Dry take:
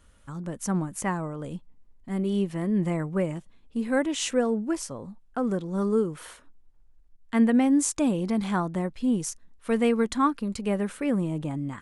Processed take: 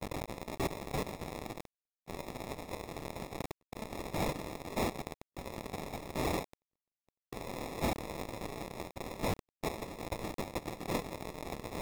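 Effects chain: switching spikes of -23.5 dBFS; bit-crush 7-bit; de-esser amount 65%; gate -50 dBFS, range -55 dB; inverse Chebyshev high-pass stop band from 2700 Hz, stop band 80 dB; sample-and-hold 29×; reverse; upward compressor, threshold -50 dBFS; reverse; gain +8.5 dB

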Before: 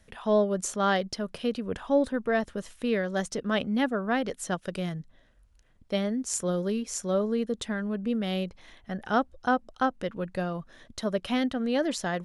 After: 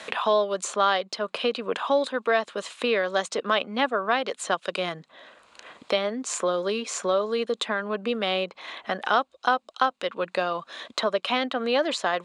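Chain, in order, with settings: speaker cabinet 500–7900 Hz, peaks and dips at 1100 Hz +6 dB, 1800 Hz -3 dB, 2500 Hz +4 dB, 3900 Hz +5 dB, 5700 Hz -8 dB; three-band squash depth 70%; gain +6 dB

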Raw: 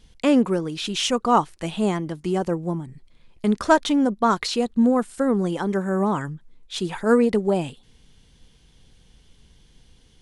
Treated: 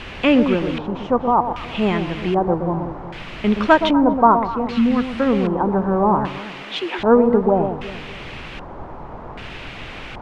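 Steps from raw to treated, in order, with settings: 1.18–1.75 level quantiser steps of 22 dB; added noise pink -37 dBFS; 4.5–5.09 bell 630 Hz -10.5 dB 1.2 oct; 6.26–6.99 steep high-pass 260 Hz 96 dB/oct; on a send: echo with dull and thin repeats by turns 0.122 s, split 970 Hz, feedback 60%, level -7 dB; on the sum: LFO low-pass square 0.64 Hz 940–2700 Hz; gain +2.5 dB

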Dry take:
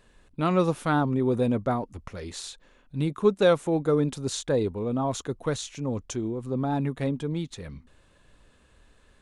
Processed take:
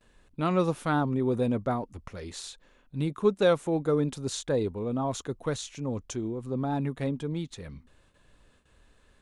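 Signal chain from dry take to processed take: gate with hold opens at -50 dBFS; gain -2.5 dB

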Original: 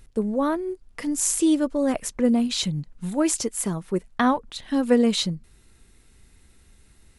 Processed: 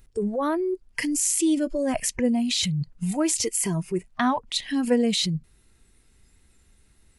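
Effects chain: spectral noise reduction 14 dB; in parallel at +2 dB: negative-ratio compressor -33 dBFS, ratio -1; on the sum: gain -3 dB

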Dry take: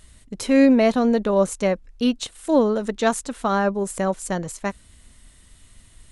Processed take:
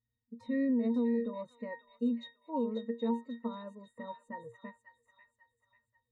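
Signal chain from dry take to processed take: octave resonator A#, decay 0.22 s; limiter -23.5 dBFS, peak gain reduction 11 dB; spectral noise reduction 21 dB; on a send: thin delay 0.541 s, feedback 42%, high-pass 2200 Hz, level -4 dB

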